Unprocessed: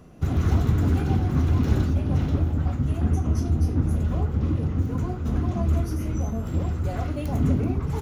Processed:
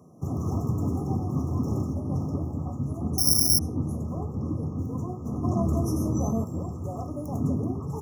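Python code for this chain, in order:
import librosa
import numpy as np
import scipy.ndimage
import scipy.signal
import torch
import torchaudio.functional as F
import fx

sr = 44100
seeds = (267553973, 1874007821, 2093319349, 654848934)

y = scipy.signal.sosfilt(scipy.signal.butter(4, 99.0, 'highpass', fs=sr, output='sos'), x)
y = fx.resample_bad(y, sr, factor=8, down='none', up='zero_stuff', at=(3.18, 3.59))
y = fx.brickwall_bandstop(y, sr, low_hz=1300.0, high_hz=5200.0)
y = fx.env_flatten(y, sr, amount_pct=50, at=(5.43, 6.43), fade=0.02)
y = y * 10.0 ** (-3.0 / 20.0)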